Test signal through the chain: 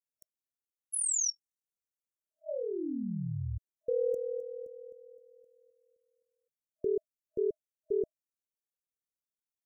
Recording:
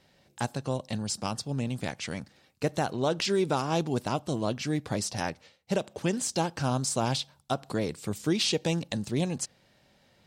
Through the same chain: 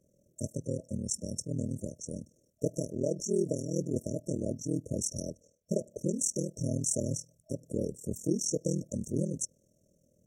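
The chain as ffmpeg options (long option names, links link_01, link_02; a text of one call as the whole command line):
ffmpeg -i in.wav -af "afftfilt=real='re*(1-between(b*sr/4096,630,5500))':imag='im*(1-between(b*sr/4096,630,5500))':win_size=4096:overlap=0.75,adynamicequalizer=threshold=0.00447:dfrequency=6600:dqfactor=0.74:tfrequency=6600:tqfactor=0.74:attack=5:release=100:ratio=0.375:range=2.5:mode=boostabove:tftype=bell,aeval=exprs='val(0)*sin(2*PI*20*n/s)':channel_layout=same" out.wav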